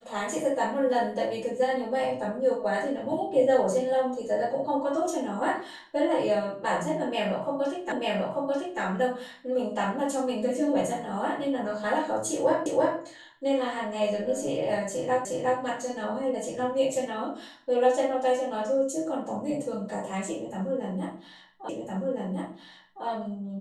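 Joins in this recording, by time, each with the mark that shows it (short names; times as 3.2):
7.92 repeat of the last 0.89 s
12.66 repeat of the last 0.33 s
15.25 repeat of the last 0.36 s
21.69 repeat of the last 1.36 s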